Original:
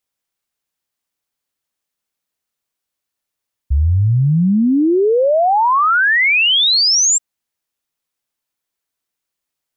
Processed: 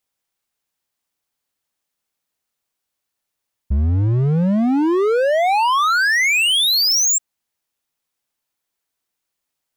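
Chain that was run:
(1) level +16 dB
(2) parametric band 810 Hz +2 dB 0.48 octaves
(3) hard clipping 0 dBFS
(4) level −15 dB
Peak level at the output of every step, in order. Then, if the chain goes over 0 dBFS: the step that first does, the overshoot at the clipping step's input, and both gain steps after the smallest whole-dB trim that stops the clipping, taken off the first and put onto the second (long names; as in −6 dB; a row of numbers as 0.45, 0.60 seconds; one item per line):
+6.0, +8.0, 0.0, −15.0 dBFS
step 1, 8.0 dB
step 1 +8 dB, step 4 −7 dB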